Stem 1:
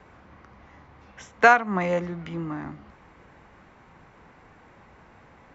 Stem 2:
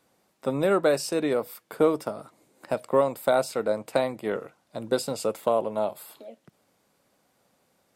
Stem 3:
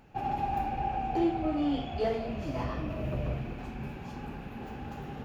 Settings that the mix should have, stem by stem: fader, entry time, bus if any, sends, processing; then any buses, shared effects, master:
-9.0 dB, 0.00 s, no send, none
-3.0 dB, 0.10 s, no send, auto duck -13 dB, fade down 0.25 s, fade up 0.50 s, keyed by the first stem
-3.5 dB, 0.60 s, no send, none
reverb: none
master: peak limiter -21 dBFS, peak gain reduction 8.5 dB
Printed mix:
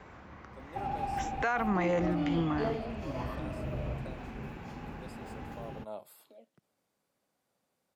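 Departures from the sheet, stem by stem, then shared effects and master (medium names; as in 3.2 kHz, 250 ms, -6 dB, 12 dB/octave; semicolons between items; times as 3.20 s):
stem 1 -9.0 dB -> +1.0 dB; stem 2 -3.0 dB -> -12.5 dB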